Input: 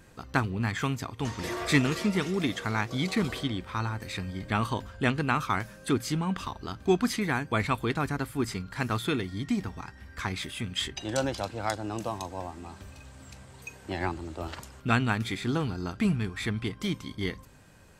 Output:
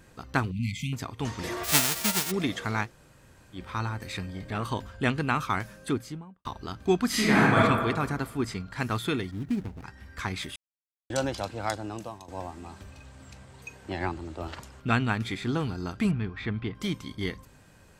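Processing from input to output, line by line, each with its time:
0.51–0.93 s: brick-wall FIR band-stop 270–2000 Hz
1.63–2.30 s: formants flattened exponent 0.1
2.87–3.57 s: room tone, crossfade 0.10 s
4.26–4.67 s: transformer saturation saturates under 750 Hz
5.72–6.45 s: studio fade out
7.07–7.56 s: reverb throw, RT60 1.5 s, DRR -8.5 dB
8.30–8.78 s: treble shelf 11 kHz -11 dB
9.31–9.84 s: median filter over 41 samples
10.56–11.10 s: mute
11.76–12.28 s: fade out, to -14.5 dB
12.83–15.58 s: treble shelf 8.1 kHz -7 dB
16.11–16.75 s: distance through air 250 m

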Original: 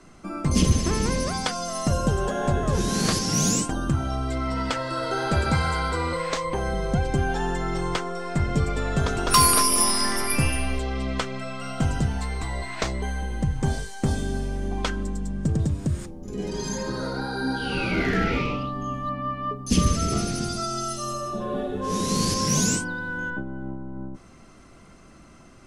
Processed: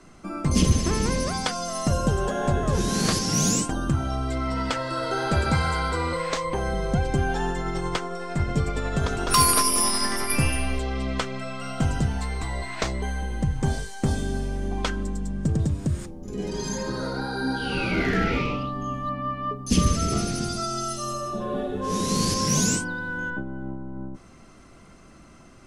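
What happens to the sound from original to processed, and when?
7.50–10.30 s: tremolo 11 Hz, depth 28%

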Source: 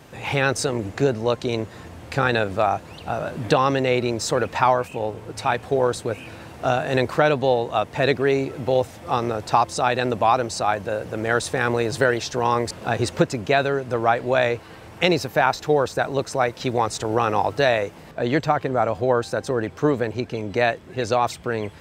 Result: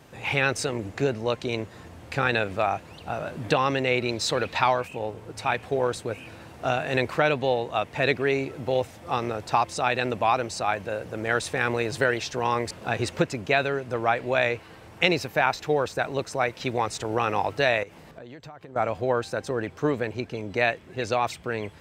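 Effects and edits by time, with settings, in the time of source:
4.09–4.81 s: peaking EQ 4 kHz +9.5 dB 0.53 oct
17.83–18.76 s: compression 20:1, threshold -33 dBFS
whole clip: dynamic bell 2.4 kHz, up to +7 dB, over -40 dBFS, Q 1.6; trim -5 dB

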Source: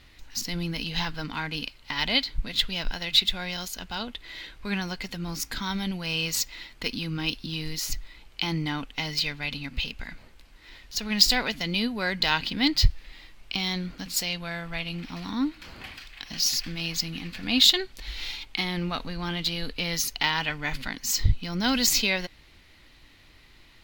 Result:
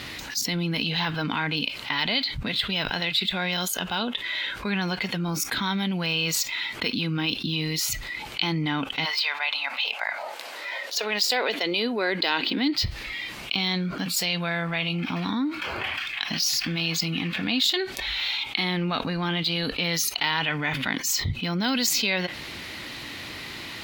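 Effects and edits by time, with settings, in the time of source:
9.04–12.70 s: resonant high-pass 990 Hz -> 290 Hz, resonance Q 2.2
whole clip: spectral noise reduction 11 dB; high-pass 130 Hz 12 dB/octave; level flattener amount 70%; trim -7 dB

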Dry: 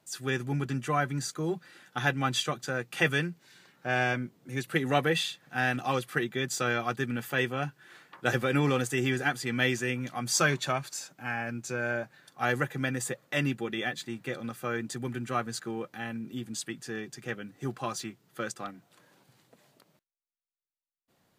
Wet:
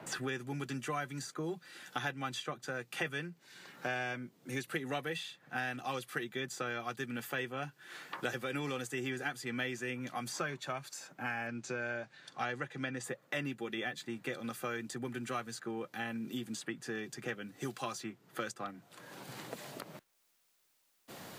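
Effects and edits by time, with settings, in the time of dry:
11.47–13.04 s: distance through air 87 m
whole clip: bass shelf 100 Hz -11.5 dB; three bands compressed up and down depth 100%; trim -8 dB

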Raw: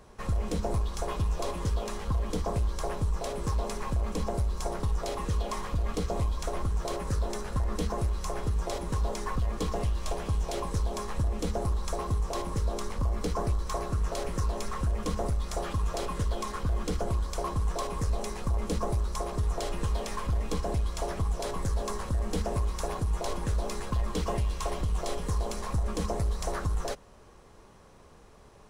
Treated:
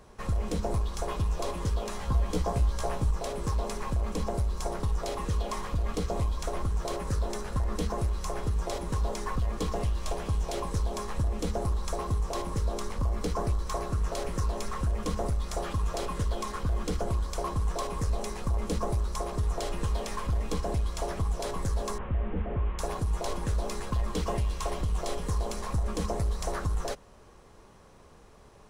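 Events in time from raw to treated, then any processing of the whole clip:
1.90–3.11 s: doubling 16 ms -4 dB
21.98–22.79 s: one-bit delta coder 16 kbps, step -48 dBFS

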